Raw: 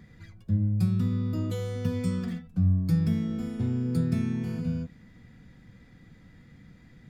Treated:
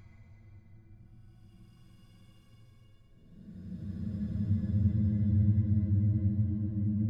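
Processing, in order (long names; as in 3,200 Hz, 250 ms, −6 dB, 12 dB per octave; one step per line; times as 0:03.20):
extreme stretch with random phases 26×, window 0.10 s, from 0:00.33
level −4.5 dB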